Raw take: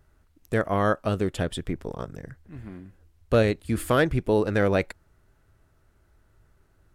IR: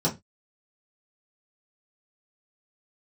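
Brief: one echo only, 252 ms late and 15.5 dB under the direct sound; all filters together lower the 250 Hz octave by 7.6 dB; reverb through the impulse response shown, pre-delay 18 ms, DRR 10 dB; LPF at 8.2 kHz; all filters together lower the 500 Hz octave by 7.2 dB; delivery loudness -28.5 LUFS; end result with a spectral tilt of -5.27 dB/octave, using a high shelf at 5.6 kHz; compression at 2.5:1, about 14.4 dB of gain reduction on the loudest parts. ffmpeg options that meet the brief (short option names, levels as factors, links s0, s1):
-filter_complex "[0:a]lowpass=8200,equalizer=f=250:t=o:g=-8.5,equalizer=f=500:t=o:g=-6.5,highshelf=f=5600:g=7,acompressor=threshold=0.00708:ratio=2.5,aecho=1:1:252:0.168,asplit=2[s0][s1];[1:a]atrim=start_sample=2205,adelay=18[s2];[s1][s2]afir=irnorm=-1:irlink=0,volume=0.0891[s3];[s0][s3]amix=inputs=2:normalize=0,volume=4.73"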